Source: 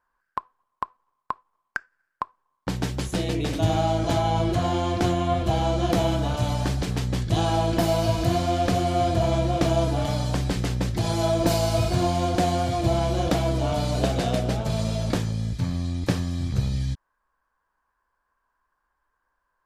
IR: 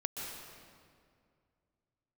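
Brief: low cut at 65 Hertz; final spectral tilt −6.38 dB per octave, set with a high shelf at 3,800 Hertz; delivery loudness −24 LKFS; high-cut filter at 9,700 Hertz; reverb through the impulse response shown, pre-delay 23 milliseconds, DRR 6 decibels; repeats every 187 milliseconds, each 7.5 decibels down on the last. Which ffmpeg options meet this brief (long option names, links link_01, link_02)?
-filter_complex "[0:a]highpass=65,lowpass=9700,highshelf=frequency=3800:gain=-6,aecho=1:1:187|374|561|748|935:0.422|0.177|0.0744|0.0312|0.0131,asplit=2[link_01][link_02];[1:a]atrim=start_sample=2205,adelay=23[link_03];[link_02][link_03]afir=irnorm=-1:irlink=0,volume=-8dB[link_04];[link_01][link_04]amix=inputs=2:normalize=0,volume=-1dB"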